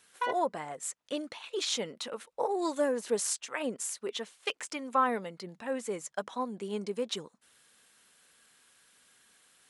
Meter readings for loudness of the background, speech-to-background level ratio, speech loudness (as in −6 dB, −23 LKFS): −37.5 LKFS, 3.5 dB, −34.0 LKFS